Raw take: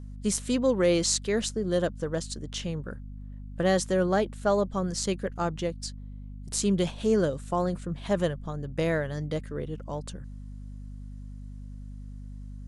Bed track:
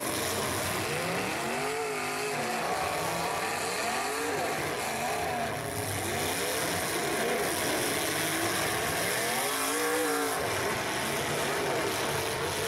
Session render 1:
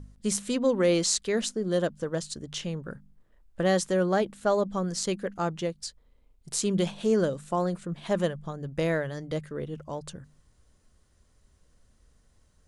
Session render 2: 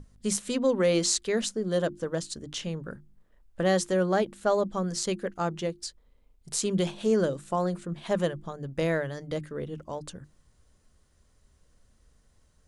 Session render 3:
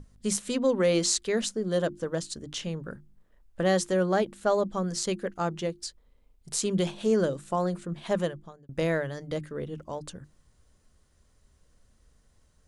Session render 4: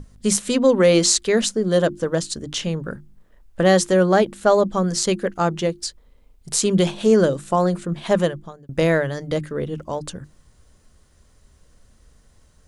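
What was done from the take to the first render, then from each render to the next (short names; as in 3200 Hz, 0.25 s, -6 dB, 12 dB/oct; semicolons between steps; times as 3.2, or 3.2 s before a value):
de-hum 50 Hz, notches 5
notches 50/100/150/200/250/300/350 Hz
8.15–8.69 fade out
gain +9 dB; limiter -1 dBFS, peak gain reduction 1.5 dB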